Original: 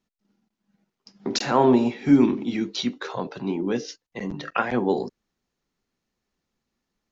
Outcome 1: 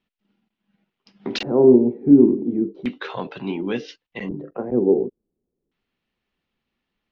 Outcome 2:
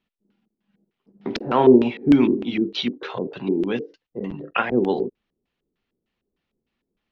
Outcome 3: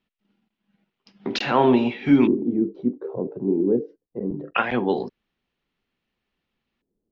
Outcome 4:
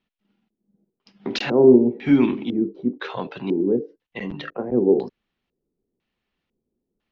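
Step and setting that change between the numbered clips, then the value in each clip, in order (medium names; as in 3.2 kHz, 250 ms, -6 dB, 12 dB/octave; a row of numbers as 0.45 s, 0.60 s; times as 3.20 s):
LFO low-pass, rate: 0.35 Hz, 3.3 Hz, 0.22 Hz, 1 Hz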